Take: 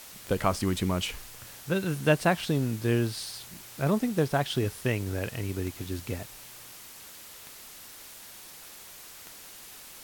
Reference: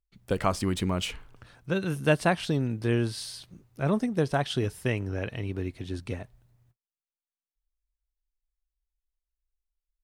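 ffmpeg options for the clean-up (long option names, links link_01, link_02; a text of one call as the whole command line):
ffmpeg -i in.wav -af "adeclick=threshold=4,afwtdn=0.005,asetnsamples=nb_out_samples=441:pad=0,asendcmd='7.07 volume volume -9dB',volume=0dB" out.wav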